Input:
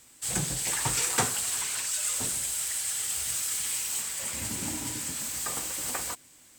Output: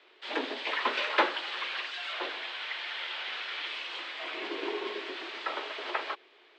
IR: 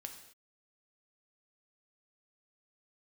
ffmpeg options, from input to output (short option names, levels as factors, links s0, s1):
-filter_complex "[0:a]asettb=1/sr,asplit=3[s0][s1][s2];[s0]atrim=end=2.124[s3];[s1]atrim=start=2.12:end=3.66,asetpts=PTS-STARTPTS,afade=t=in:d=0.004:c=qsin,afade=t=out:st=1.536:d=0.004:c=qsin,asplit=2[s4][s5];[s5]highpass=f=720:p=1,volume=3.16,asoftclip=type=tanh:threshold=0.133[s6];[s4][s6]amix=inputs=2:normalize=0,lowpass=f=2900:p=1,volume=0.501[s7];[s2]atrim=start=3.656[s8];[s3][s7]acrossfade=d=0.004:c1=hsin:c2=qsin[s9];[s9][s8]acrossfade=d=0.004:c1=qsin:c2=hsin,highpass=f=220:t=q:w=0.5412,highpass=f=220:t=q:w=1.307,lowpass=f=3600:t=q:w=0.5176,lowpass=f=3600:t=q:w=0.7071,lowpass=f=3600:t=q:w=1.932,afreqshift=110,volume=1.68"